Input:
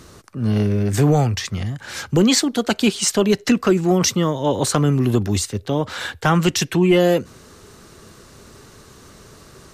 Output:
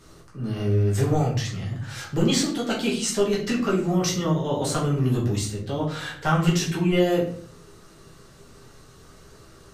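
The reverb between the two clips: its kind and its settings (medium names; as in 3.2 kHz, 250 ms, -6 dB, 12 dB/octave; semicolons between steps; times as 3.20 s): simulated room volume 59 m³, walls mixed, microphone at 1.2 m; trim -12 dB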